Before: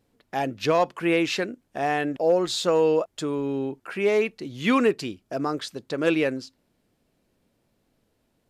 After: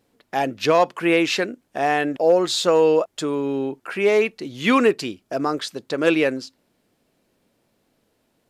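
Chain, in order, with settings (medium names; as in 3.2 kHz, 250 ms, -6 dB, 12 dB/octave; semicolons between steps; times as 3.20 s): bass shelf 130 Hz -10.5 dB; trim +5 dB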